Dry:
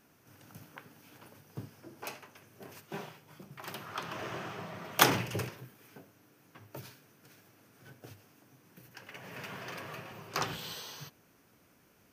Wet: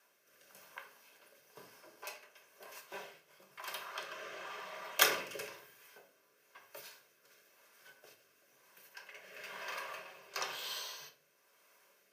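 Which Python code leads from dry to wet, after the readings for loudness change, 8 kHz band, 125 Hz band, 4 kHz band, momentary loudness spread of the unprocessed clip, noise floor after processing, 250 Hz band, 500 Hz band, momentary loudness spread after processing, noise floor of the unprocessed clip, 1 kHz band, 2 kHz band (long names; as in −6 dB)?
−3.0 dB, −1.5 dB, −26.0 dB, −1.5 dB, 19 LU, −71 dBFS, −16.5 dB, −5.0 dB, 18 LU, −65 dBFS, −6.0 dB, −1.5 dB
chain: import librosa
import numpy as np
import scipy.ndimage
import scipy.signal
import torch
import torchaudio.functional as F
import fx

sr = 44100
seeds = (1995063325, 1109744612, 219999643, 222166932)

y = scipy.signal.sosfilt(scipy.signal.butter(2, 670.0, 'highpass', fs=sr, output='sos'), x)
y = y + 0.4 * np.pad(y, (int(1.9 * sr / 1000.0), 0))[:len(y)]
y = fx.rotary(y, sr, hz=1.0)
y = fx.room_shoebox(y, sr, seeds[0], volume_m3=360.0, walls='furnished', distance_m=1.2)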